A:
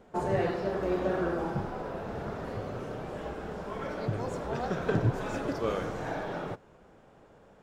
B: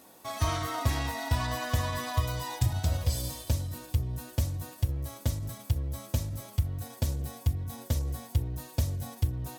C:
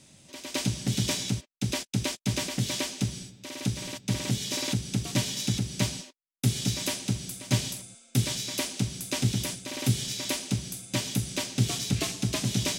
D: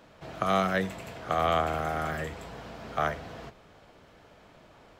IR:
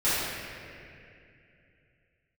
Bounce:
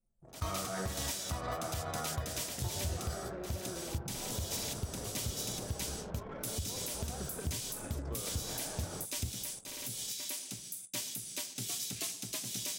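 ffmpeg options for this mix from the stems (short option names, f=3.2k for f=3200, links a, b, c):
-filter_complex "[0:a]highshelf=f=5.9k:g=7.5,adelay=2500,volume=-2.5dB[a];[1:a]acompressor=threshold=-28dB:ratio=5,agate=range=-27dB:threshold=-31dB:ratio=16:detection=peak,volume=0.5dB[b];[2:a]aemphasis=mode=production:type=bsi,volume=-12.5dB[c];[3:a]lowpass=1.8k,volume=-14dB,asplit=2[d][e];[e]volume=-13dB[f];[a][d]amix=inputs=2:normalize=0,lowshelf=f=300:g=4,acompressor=threshold=-40dB:ratio=10,volume=0dB[g];[4:a]atrim=start_sample=2205[h];[f][h]afir=irnorm=-1:irlink=0[i];[b][c][g][i]amix=inputs=4:normalize=0,anlmdn=0.01,alimiter=level_in=1.5dB:limit=-24dB:level=0:latency=1:release=154,volume=-1.5dB"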